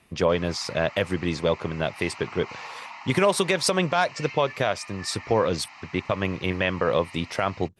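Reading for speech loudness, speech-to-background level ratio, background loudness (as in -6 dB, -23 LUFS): -25.5 LUFS, 16.5 dB, -42.0 LUFS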